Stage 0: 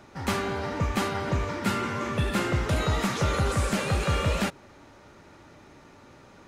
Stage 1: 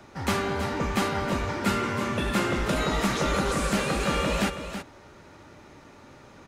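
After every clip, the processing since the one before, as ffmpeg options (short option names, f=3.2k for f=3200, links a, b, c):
-filter_complex "[0:a]acrossover=split=190|1100[a][b][c];[a]aeval=exprs='0.0422*(abs(mod(val(0)/0.0422+3,4)-2)-1)':c=same[d];[d][b][c]amix=inputs=3:normalize=0,aecho=1:1:325:0.335,volume=1.5dB"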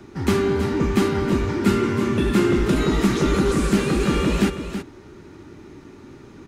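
-af "lowshelf=f=460:t=q:w=3:g=6,volume=1dB"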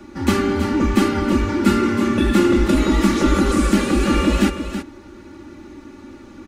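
-af "aecho=1:1:3.5:0.8,volume=1dB"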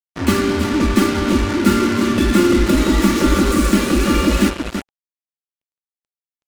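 -af "acrusher=bits=3:mix=0:aa=0.5,bandreject=f=810:w=12,volume=1.5dB"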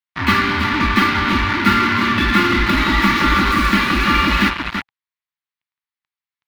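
-af "equalizer=f=125:t=o:w=1:g=6,equalizer=f=500:t=o:w=1:g=-11,equalizer=f=1k:t=o:w=1:g=11,equalizer=f=2k:t=o:w=1:g=11,equalizer=f=4k:t=o:w=1:g=8,equalizer=f=8k:t=o:w=1:g=-11,volume=-3.5dB"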